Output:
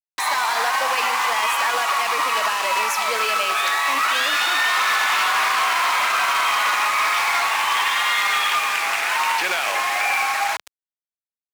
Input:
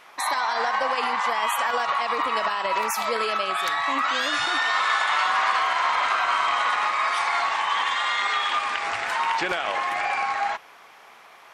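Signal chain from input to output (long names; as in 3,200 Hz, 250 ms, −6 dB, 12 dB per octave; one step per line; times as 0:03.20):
repeating echo 246 ms, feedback 44%, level −15 dB
on a send at −20 dB: convolution reverb, pre-delay 3 ms
on the sum: dynamic equaliser 2,500 Hz, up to +6 dB, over −46 dBFS, Q 4.5
bit reduction 5 bits
in parallel at −6 dB: wrap-around overflow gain 14.5 dB
on the sum: brickwall limiter −18 dBFS, peak gain reduction 7.5 dB
meter weighting curve A
level +3.5 dB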